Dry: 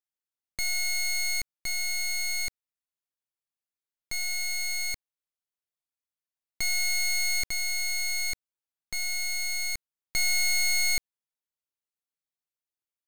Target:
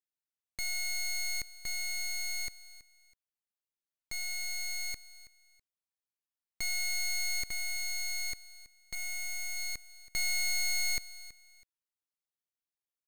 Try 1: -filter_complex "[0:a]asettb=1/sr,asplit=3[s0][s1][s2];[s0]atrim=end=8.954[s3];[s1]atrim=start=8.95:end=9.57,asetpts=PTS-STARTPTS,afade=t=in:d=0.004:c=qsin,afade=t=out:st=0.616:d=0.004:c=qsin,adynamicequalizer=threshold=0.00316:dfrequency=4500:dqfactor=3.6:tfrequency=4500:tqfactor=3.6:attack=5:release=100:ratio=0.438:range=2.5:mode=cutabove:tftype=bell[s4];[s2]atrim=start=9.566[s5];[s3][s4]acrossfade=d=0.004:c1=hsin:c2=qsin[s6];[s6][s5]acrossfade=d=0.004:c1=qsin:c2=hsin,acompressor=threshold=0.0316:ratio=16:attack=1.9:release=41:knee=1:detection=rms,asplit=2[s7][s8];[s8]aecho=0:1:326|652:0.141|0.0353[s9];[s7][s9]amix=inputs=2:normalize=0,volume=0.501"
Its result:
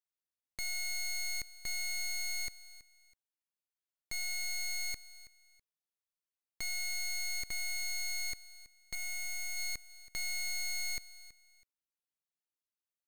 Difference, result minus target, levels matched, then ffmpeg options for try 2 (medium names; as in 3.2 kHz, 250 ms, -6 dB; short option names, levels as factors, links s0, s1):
compression: peak gain reduction +5.5 dB
-filter_complex "[0:a]asettb=1/sr,asplit=3[s0][s1][s2];[s0]atrim=end=8.954[s3];[s1]atrim=start=8.95:end=9.57,asetpts=PTS-STARTPTS,afade=t=in:d=0.004:c=qsin,afade=t=out:st=0.616:d=0.004:c=qsin,adynamicequalizer=threshold=0.00316:dfrequency=4500:dqfactor=3.6:tfrequency=4500:tqfactor=3.6:attack=5:release=100:ratio=0.438:range=2.5:mode=cutabove:tftype=bell[s4];[s2]atrim=start=9.566[s5];[s3][s4]acrossfade=d=0.004:c1=hsin:c2=qsin[s6];[s6][s5]acrossfade=d=0.004:c1=qsin:c2=hsin,asplit=2[s7][s8];[s8]aecho=0:1:326|652:0.141|0.0353[s9];[s7][s9]amix=inputs=2:normalize=0,volume=0.501"